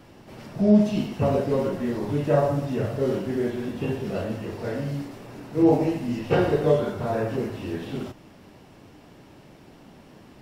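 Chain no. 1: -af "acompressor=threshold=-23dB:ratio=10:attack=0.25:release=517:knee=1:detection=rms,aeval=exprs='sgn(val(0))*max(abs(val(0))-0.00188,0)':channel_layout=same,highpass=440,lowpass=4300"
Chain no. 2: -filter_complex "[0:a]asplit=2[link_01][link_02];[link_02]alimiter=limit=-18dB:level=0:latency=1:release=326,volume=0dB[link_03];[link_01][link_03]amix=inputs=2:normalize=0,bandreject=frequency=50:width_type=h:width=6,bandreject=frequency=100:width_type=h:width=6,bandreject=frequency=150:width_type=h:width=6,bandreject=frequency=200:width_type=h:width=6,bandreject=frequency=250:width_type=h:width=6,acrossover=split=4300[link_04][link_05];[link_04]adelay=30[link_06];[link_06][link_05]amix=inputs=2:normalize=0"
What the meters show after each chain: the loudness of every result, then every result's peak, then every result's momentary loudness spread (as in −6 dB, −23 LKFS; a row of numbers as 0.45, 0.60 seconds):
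−38.0, −21.5 LKFS; −23.0, −5.0 dBFS; 22, 11 LU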